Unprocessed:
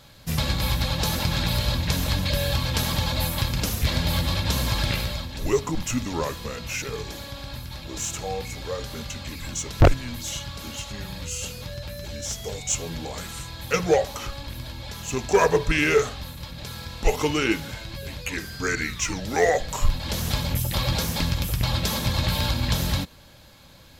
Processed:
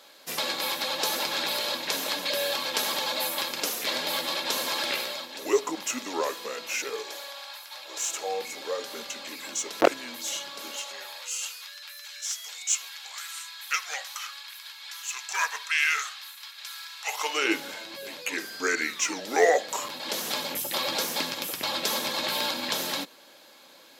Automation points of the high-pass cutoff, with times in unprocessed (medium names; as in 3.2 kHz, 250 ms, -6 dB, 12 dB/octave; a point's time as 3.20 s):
high-pass 24 dB/octave
6.89 s 330 Hz
7.55 s 750 Hz
8.40 s 310 Hz
10.61 s 310 Hz
11.67 s 1.2 kHz
16.99 s 1.2 kHz
17.58 s 290 Hz